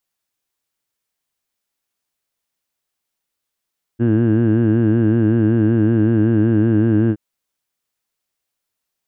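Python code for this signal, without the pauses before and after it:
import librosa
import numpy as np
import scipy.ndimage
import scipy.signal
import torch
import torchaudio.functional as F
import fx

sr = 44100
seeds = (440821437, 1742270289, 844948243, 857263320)

y = fx.formant_vowel(sr, seeds[0], length_s=3.17, hz=113.0, glide_st=-0.5, vibrato_hz=5.3, vibrato_st=0.9, f1_hz=300.0, f2_hz=1600.0, f3_hz=2800.0)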